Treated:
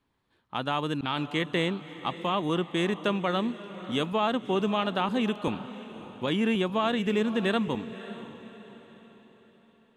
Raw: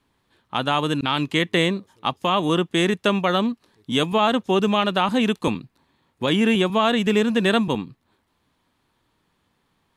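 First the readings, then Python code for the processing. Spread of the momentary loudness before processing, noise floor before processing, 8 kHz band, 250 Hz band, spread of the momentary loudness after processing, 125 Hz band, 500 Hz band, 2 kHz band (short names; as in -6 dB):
8 LU, -70 dBFS, under -10 dB, -7.0 dB, 14 LU, -6.5 dB, -7.0 dB, -8.0 dB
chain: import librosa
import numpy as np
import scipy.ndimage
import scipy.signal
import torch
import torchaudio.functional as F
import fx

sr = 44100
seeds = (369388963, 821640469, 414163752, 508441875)

y = fx.high_shelf(x, sr, hz=4600.0, db=-6.5)
y = fx.echo_diffused(y, sr, ms=575, feedback_pct=42, wet_db=-14.0)
y = y * 10.0 ** (-7.0 / 20.0)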